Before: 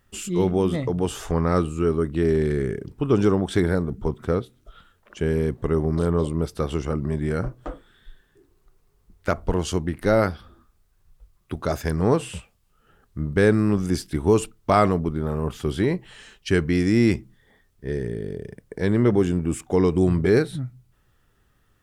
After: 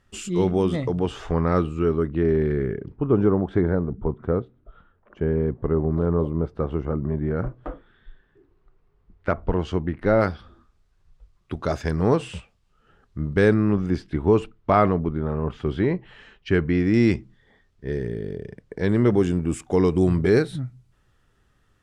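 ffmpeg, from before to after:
-af "asetnsamples=n=441:p=0,asendcmd='0.99 lowpass f 3600;2.08 lowpass f 2200;2.96 lowpass f 1300;7.39 lowpass f 2400;10.21 lowpass f 5700;13.54 lowpass f 2600;16.94 lowpass f 5300;18.89 lowpass f 8800',lowpass=7600"

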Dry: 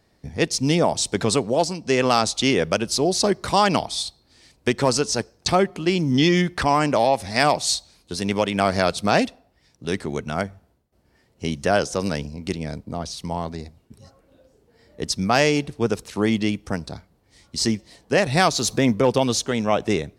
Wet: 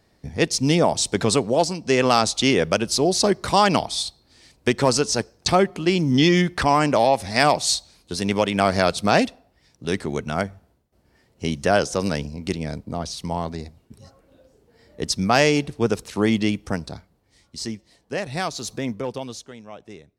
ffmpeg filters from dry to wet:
-af "volume=1.12,afade=t=out:st=16.68:d=0.95:silence=0.334965,afade=t=out:st=18.88:d=0.74:silence=0.281838"

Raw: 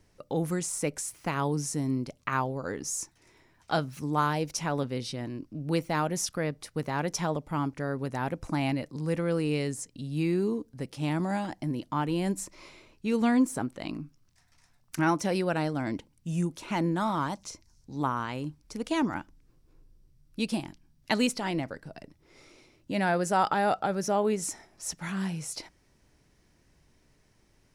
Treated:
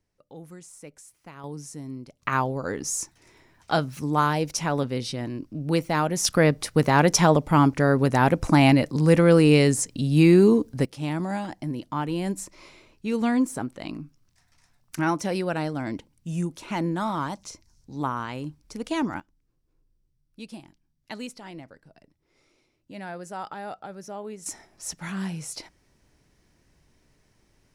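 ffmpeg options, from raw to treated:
-af "asetnsamples=n=441:p=0,asendcmd='1.44 volume volume -7.5dB;2.22 volume volume 4.5dB;6.25 volume volume 12dB;10.85 volume volume 1dB;19.2 volume volume -10.5dB;24.46 volume volume 1dB',volume=0.2"

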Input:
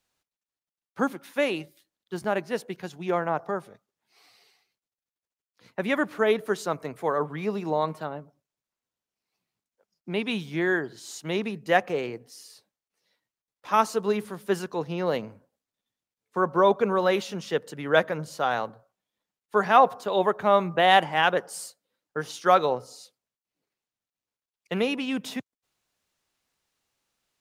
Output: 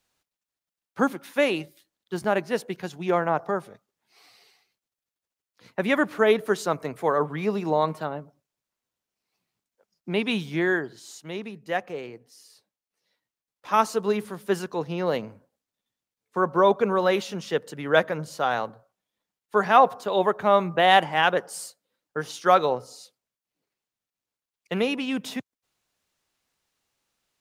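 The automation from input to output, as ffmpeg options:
-af "volume=3.16,afade=t=out:st=10.46:d=0.8:silence=0.354813,afade=t=in:st=12.3:d=1.56:silence=0.446684"

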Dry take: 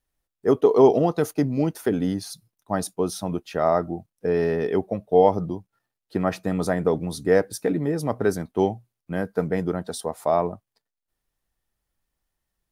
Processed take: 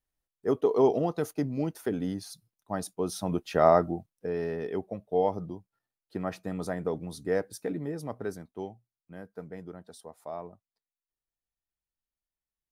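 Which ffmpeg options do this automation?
-af "volume=1.12,afade=t=in:st=2.96:d=0.69:silence=0.375837,afade=t=out:st=3.65:d=0.64:silence=0.298538,afade=t=out:st=7.81:d=0.88:silence=0.398107"

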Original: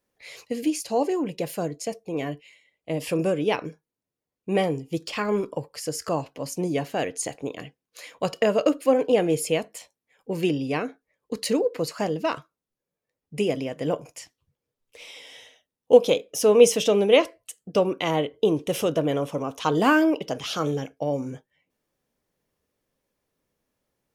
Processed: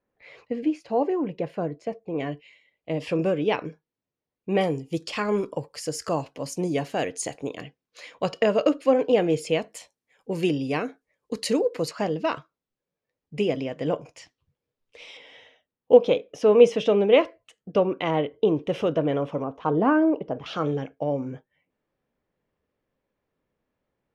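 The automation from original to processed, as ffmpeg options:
-af "asetnsamples=n=441:p=0,asendcmd='2.2 lowpass f 4000;4.61 lowpass f 9600;7.61 lowpass f 5300;9.68 lowpass f 10000;11.91 lowpass f 4600;15.17 lowpass f 2600;19.44 lowpass f 1100;20.46 lowpass f 2600',lowpass=1900"

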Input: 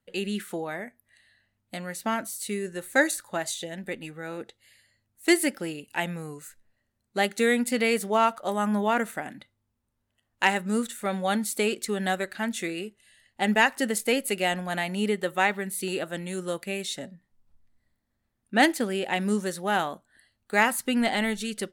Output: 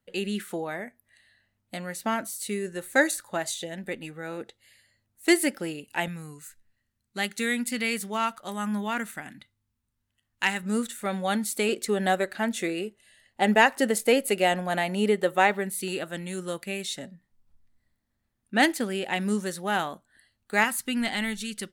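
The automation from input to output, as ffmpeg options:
-af "asetnsamples=n=441:p=0,asendcmd='6.08 equalizer g -11;10.63 equalizer g -1.5;11.69 equalizer g 5;15.7 equalizer g -2.5;20.64 equalizer g -9.5',equalizer=f=550:t=o:w=1.7:g=0.5"

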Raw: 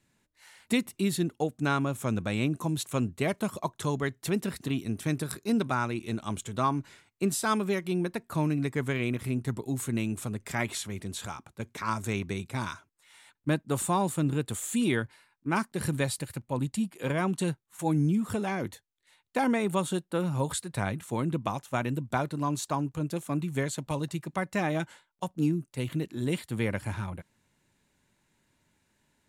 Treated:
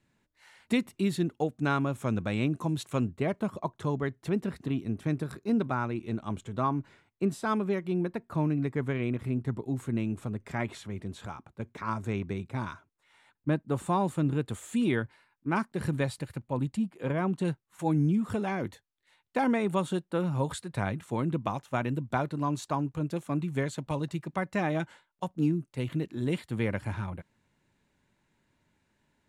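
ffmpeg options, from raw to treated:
-af "asetnsamples=n=441:p=0,asendcmd='3.12 lowpass f 1300;13.86 lowpass f 2200;16.77 lowpass f 1300;17.45 lowpass f 3100',lowpass=f=3100:p=1"

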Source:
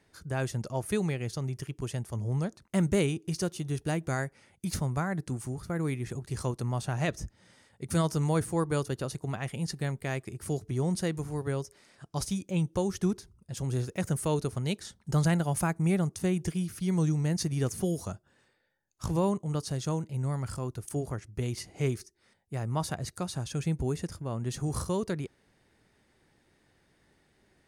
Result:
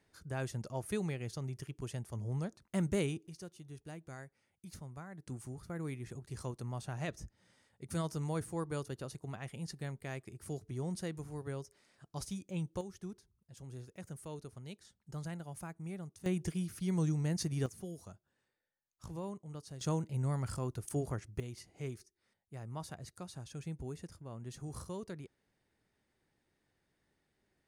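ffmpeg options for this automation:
-af "asetnsamples=n=441:p=0,asendcmd='3.27 volume volume -17.5dB;5.27 volume volume -9.5dB;12.81 volume volume -17dB;16.26 volume volume -5.5dB;17.66 volume volume -15dB;19.81 volume volume -3dB;21.4 volume volume -12.5dB',volume=0.447"

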